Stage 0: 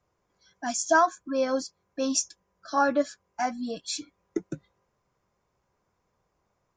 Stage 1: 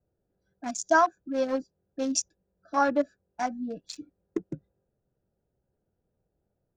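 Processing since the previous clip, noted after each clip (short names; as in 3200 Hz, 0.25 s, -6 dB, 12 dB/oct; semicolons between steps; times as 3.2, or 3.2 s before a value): Wiener smoothing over 41 samples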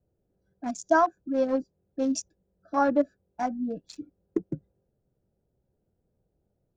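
tilt shelf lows +5.5 dB, about 1100 Hz; gain -1.5 dB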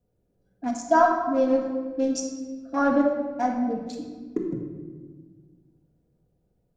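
shoebox room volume 1400 m³, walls mixed, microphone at 1.8 m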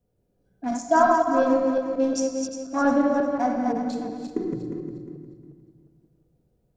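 regenerating reverse delay 0.178 s, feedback 53%, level -4 dB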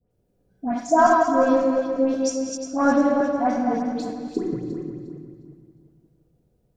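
dispersion highs, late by 0.11 s, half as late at 2000 Hz; gain +2 dB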